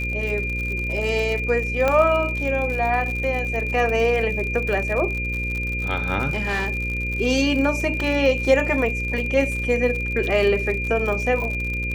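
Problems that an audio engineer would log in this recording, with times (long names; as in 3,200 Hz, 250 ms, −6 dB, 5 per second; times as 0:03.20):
mains buzz 60 Hz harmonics 9 −28 dBFS
surface crackle 68 per second −27 dBFS
whistle 2,400 Hz −26 dBFS
0:01.88: click −8 dBFS
0:06.30–0:06.83: clipping −19 dBFS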